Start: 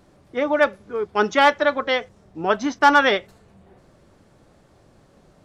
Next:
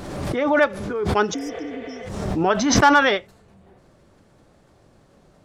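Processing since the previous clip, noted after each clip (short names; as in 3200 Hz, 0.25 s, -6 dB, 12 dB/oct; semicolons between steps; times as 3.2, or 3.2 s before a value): spectral repair 1.36–1.98, 360–4900 Hz after; backwards sustainer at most 38 dB/s; gain -1 dB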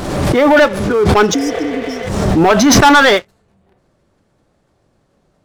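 in parallel at -10 dB: soft clip -10.5 dBFS, distortion -14 dB; on the sum: sample leveller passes 3; gain -1 dB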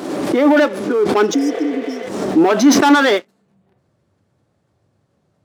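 high-pass sweep 290 Hz -> 99 Hz, 3.14–3.83; gain -6.5 dB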